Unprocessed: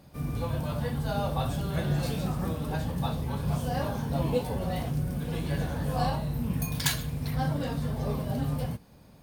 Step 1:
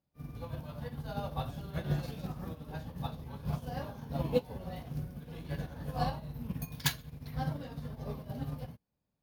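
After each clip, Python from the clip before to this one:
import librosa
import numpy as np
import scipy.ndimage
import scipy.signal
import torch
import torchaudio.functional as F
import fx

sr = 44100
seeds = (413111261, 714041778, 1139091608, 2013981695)

y = fx.peak_eq(x, sr, hz=8200.0, db=-10.5, octaves=0.34)
y = fx.upward_expand(y, sr, threshold_db=-43.0, expansion=2.5)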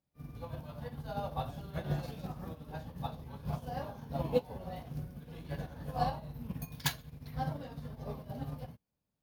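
y = fx.dynamic_eq(x, sr, hz=740.0, q=1.3, threshold_db=-50.0, ratio=4.0, max_db=5)
y = y * librosa.db_to_amplitude(-2.5)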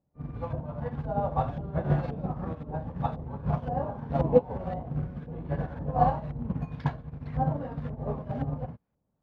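y = fx.quant_float(x, sr, bits=2)
y = fx.filter_lfo_lowpass(y, sr, shape='saw_up', hz=1.9, low_hz=710.0, high_hz=1900.0, q=0.91)
y = y * librosa.db_to_amplitude(9.0)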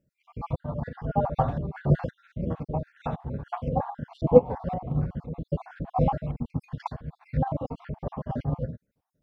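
y = fx.spec_dropout(x, sr, seeds[0], share_pct=53)
y = y * librosa.db_to_amplitude(5.0)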